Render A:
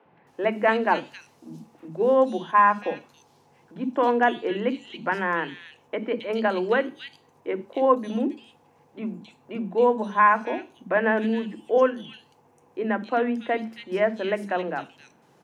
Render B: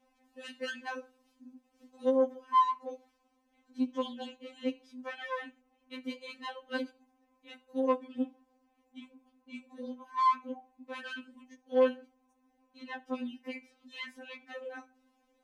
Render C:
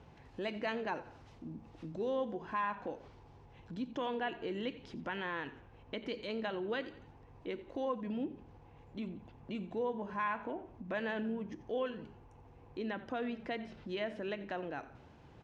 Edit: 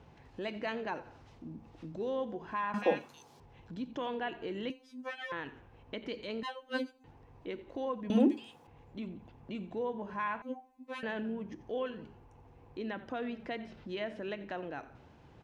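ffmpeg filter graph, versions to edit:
-filter_complex "[0:a]asplit=2[a][b];[1:a]asplit=3[c][d][e];[2:a]asplit=6[f][g][h][i][j][k];[f]atrim=end=2.742[l];[a]atrim=start=2.738:end=3.402[m];[g]atrim=start=3.398:end=4.702[n];[c]atrim=start=4.698:end=5.322[o];[h]atrim=start=5.318:end=6.432[p];[d]atrim=start=6.428:end=7.042[q];[i]atrim=start=7.038:end=8.102[r];[b]atrim=start=8.098:end=8.672[s];[j]atrim=start=8.668:end=10.422[t];[e]atrim=start=10.418:end=11.032[u];[k]atrim=start=11.028[v];[l][m]acrossfade=d=0.004:c1=hsin:c2=hsin[w];[w][n]acrossfade=d=0.004:c1=hsin:c2=hsin[x];[x][o]acrossfade=d=0.004:c1=hsin:c2=hsin[y];[y][p]acrossfade=d=0.004:c1=hsin:c2=hsin[z];[z][q]acrossfade=d=0.004:c1=hsin:c2=hsin[aa];[aa][r]acrossfade=d=0.004:c1=hsin:c2=hsin[ab];[ab][s]acrossfade=d=0.004:c1=hsin:c2=hsin[ac];[ac][t]acrossfade=d=0.004:c1=hsin:c2=hsin[ad];[ad][u]acrossfade=d=0.004:c1=hsin:c2=hsin[ae];[ae][v]acrossfade=d=0.004:c1=hsin:c2=hsin"

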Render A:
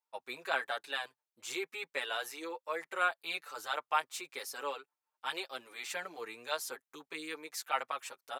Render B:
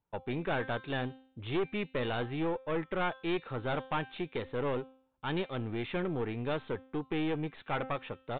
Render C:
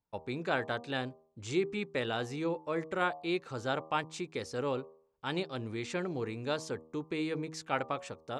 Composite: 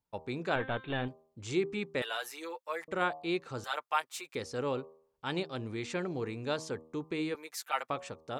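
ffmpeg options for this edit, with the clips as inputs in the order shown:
-filter_complex "[0:a]asplit=3[a][b][c];[2:a]asplit=5[d][e][f][g][h];[d]atrim=end=0.562[i];[1:a]atrim=start=0.558:end=1.082[j];[e]atrim=start=1.078:end=2.022[k];[a]atrim=start=2.018:end=2.882[l];[f]atrim=start=2.878:end=3.642[m];[b]atrim=start=3.638:end=4.352[n];[g]atrim=start=4.348:end=7.352[o];[c]atrim=start=7.348:end=7.902[p];[h]atrim=start=7.898[q];[i][j]acrossfade=d=0.004:c1=hsin:c2=hsin[r];[r][k]acrossfade=d=0.004:c1=hsin:c2=hsin[s];[s][l]acrossfade=d=0.004:c1=hsin:c2=hsin[t];[t][m]acrossfade=d=0.004:c1=hsin:c2=hsin[u];[u][n]acrossfade=d=0.004:c1=hsin:c2=hsin[v];[v][o]acrossfade=d=0.004:c1=hsin:c2=hsin[w];[w][p]acrossfade=d=0.004:c1=hsin:c2=hsin[x];[x][q]acrossfade=d=0.004:c1=hsin:c2=hsin"

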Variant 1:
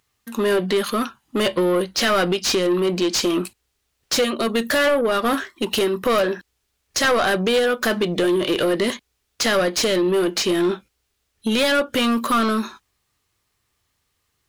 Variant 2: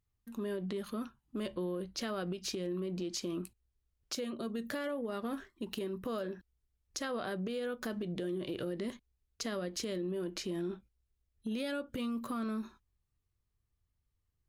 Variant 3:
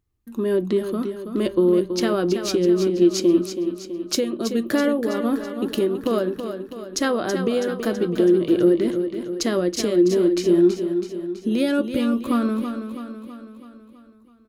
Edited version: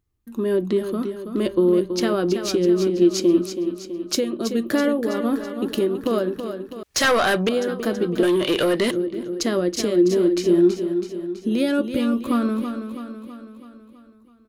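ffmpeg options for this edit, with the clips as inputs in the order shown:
-filter_complex "[0:a]asplit=2[a][b];[2:a]asplit=3[c][d][e];[c]atrim=end=6.832[f];[a]atrim=start=6.828:end=7.492[g];[d]atrim=start=7.488:end=8.232[h];[b]atrim=start=8.228:end=8.912[i];[e]atrim=start=8.908[j];[f][g]acrossfade=d=0.004:c1=hsin:c2=hsin[k];[k][h]acrossfade=d=0.004:c1=hsin:c2=hsin[l];[l][i]acrossfade=d=0.004:c1=hsin:c2=hsin[m];[m][j]acrossfade=d=0.004:c1=hsin:c2=hsin"

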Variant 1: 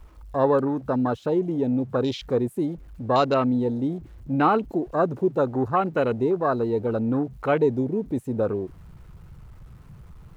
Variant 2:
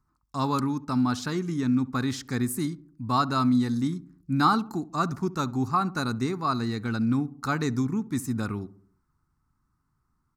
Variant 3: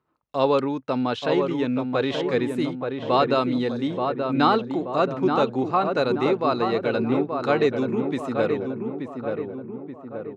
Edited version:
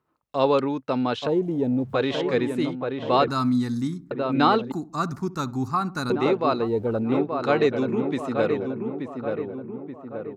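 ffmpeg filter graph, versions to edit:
-filter_complex "[0:a]asplit=2[a][b];[1:a]asplit=2[c][d];[2:a]asplit=5[e][f][g][h][i];[e]atrim=end=1.272[j];[a]atrim=start=1.268:end=1.942[k];[f]atrim=start=1.938:end=3.282[l];[c]atrim=start=3.278:end=4.112[m];[g]atrim=start=4.108:end=4.722[n];[d]atrim=start=4.718:end=6.102[o];[h]atrim=start=6.098:end=6.69[p];[b]atrim=start=6.53:end=7.15[q];[i]atrim=start=6.99[r];[j][k]acrossfade=d=0.004:c1=hsin:c2=hsin[s];[s][l]acrossfade=d=0.004:c1=hsin:c2=hsin[t];[t][m]acrossfade=d=0.004:c1=hsin:c2=hsin[u];[u][n]acrossfade=d=0.004:c1=hsin:c2=hsin[v];[v][o]acrossfade=d=0.004:c1=hsin:c2=hsin[w];[w][p]acrossfade=d=0.004:c1=hsin:c2=hsin[x];[x][q]acrossfade=d=0.16:c1=tri:c2=tri[y];[y][r]acrossfade=d=0.16:c1=tri:c2=tri"

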